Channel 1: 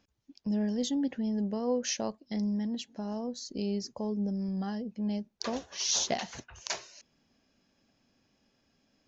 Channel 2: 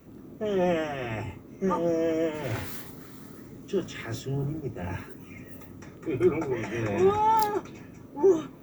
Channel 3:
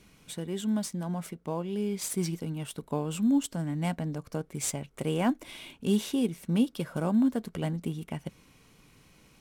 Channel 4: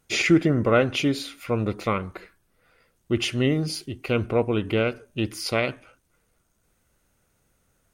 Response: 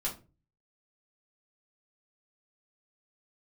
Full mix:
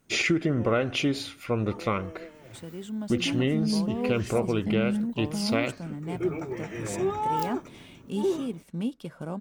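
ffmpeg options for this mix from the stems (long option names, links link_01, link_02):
-filter_complex "[0:a]lowpass=1900,lowshelf=frequency=230:width_type=q:width=1.5:gain=7.5,adelay=2350,volume=0dB[link_01];[1:a]volume=-5dB,afade=type=in:start_time=5.55:duration=0.68:silence=0.251189[link_02];[2:a]adynamicequalizer=threshold=0.00447:dfrequency=1600:dqfactor=0.7:tfrequency=1600:tqfactor=0.7:attack=5:release=100:ratio=0.375:range=2:mode=cutabove:tftype=highshelf,adelay=2250,volume=-5dB[link_03];[3:a]volume=-1.5dB,asplit=2[link_04][link_05];[link_05]apad=whole_len=503841[link_06];[link_01][link_06]sidechaingate=range=-33dB:threshold=-51dB:ratio=16:detection=peak[link_07];[link_07][link_02][link_03][link_04]amix=inputs=4:normalize=0,equalizer=frequency=12000:width_type=o:width=0.44:gain=-6.5,acompressor=threshold=-20dB:ratio=6"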